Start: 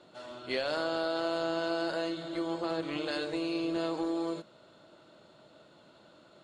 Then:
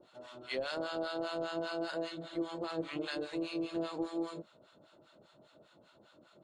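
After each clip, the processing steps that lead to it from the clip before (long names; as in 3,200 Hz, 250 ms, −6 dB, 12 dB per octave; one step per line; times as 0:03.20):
notch filter 4,500 Hz, Q 24
two-band tremolo in antiphase 5 Hz, depth 100%, crossover 800 Hz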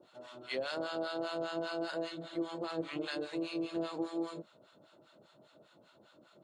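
high-pass filter 88 Hz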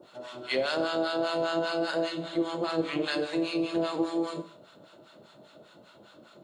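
four-comb reverb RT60 0.52 s, combs from 31 ms, DRR 11 dB
level +8.5 dB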